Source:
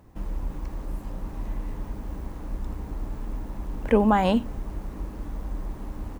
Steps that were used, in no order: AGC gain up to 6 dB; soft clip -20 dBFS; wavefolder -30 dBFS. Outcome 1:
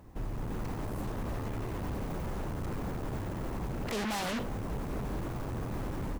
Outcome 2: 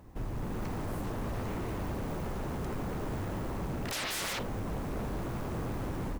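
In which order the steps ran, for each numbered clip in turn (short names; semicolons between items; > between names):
AGC > soft clip > wavefolder; AGC > wavefolder > soft clip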